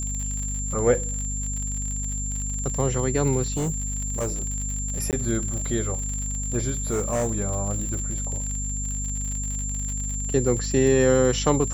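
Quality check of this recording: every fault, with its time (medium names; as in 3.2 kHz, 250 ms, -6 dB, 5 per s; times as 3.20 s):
crackle 69 per s -29 dBFS
hum 50 Hz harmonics 5 -30 dBFS
whine 7.3 kHz -30 dBFS
3.52–4.48 s: clipped -22 dBFS
5.11–5.13 s: dropout 18 ms
6.90–7.32 s: clipped -20 dBFS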